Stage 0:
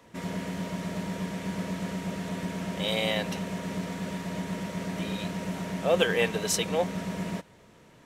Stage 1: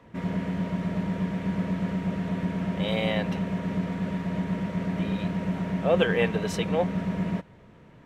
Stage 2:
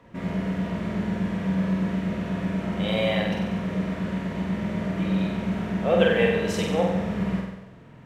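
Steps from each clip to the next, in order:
bass and treble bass +6 dB, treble −15 dB; level +1 dB
flutter between parallel walls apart 8.1 metres, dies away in 0.93 s

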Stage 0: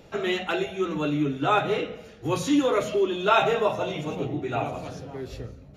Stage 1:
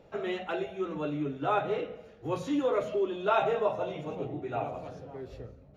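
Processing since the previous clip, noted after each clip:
drawn EQ curve 300 Hz 0 dB, 550 Hz +5 dB, 9,800 Hz −10 dB
level −8 dB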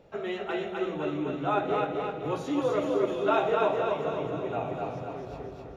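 echo with a time of its own for lows and highs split 310 Hz, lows 375 ms, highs 257 ms, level −3 dB
convolution reverb RT60 5.6 s, pre-delay 30 ms, DRR 12.5 dB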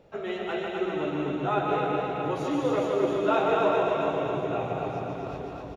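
reverse bouncing-ball delay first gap 150 ms, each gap 1.5×, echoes 5

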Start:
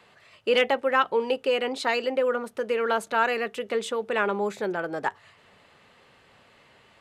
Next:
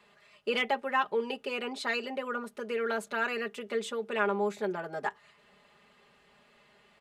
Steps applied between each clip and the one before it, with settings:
comb filter 4.9 ms, depth 81%
level −7.5 dB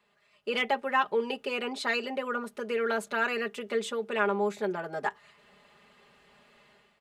automatic gain control gain up to 11 dB
level −8.5 dB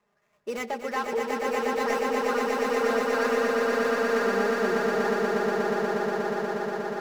running median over 15 samples
brickwall limiter −22.5 dBFS, peak gain reduction 8 dB
echo that builds up and dies away 120 ms, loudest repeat 8, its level −4 dB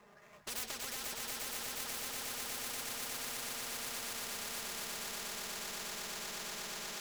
leveller curve on the samples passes 1
brickwall limiter −23 dBFS, peak gain reduction 10 dB
every bin compressed towards the loudest bin 10 to 1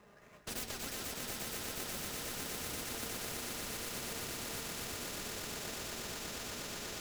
in parallel at −5.5 dB: decimation without filtering 39×
on the sum: convolution reverb, pre-delay 96 ms, DRR 9.5 dB
level −1.5 dB

